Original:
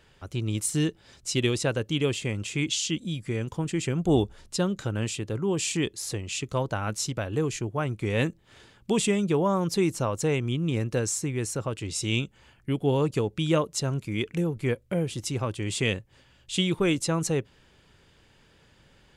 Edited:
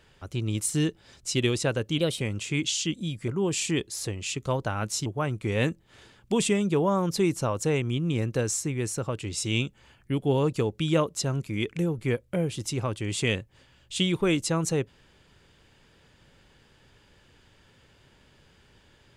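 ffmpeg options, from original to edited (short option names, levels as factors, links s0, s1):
-filter_complex "[0:a]asplit=5[s0][s1][s2][s3][s4];[s0]atrim=end=1.984[s5];[s1]atrim=start=1.98:end=2.25,asetpts=PTS-STARTPTS,asetrate=52038,aresample=44100[s6];[s2]atrim=start=2.246:end=3.322[s7];[s3]atrim=start=5.338:end=7.122[s8];[s4]atrim=start=7.638[s9];[s5][s6]acrossfade=d=0.004:c1=hsin:c2=hsin[s10];[s10][s7]acrossfade=d=0.004:c1=hsin:c2=hsin[s11];[s11][s8]acrossfade=d=0.004:c1=hsin:c2=hsin[s12];[s12][s9]acrossfade=d=0.004:c1=hsin:c2=hsin"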